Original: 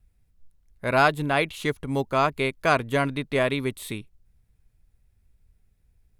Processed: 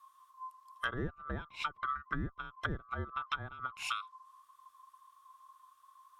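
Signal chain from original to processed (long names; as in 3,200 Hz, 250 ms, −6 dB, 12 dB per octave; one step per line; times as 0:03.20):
neighbouring bands swapped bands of 1,000 Hz
treble cut that deepens with the level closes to 350 Hz, closed at −21 dBFS
guitar amp tone stack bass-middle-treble 5-5-5
downward compressor 4 to 1, threshold −47 dBFS, peak gain reduction 8.5 dB
level +14 dB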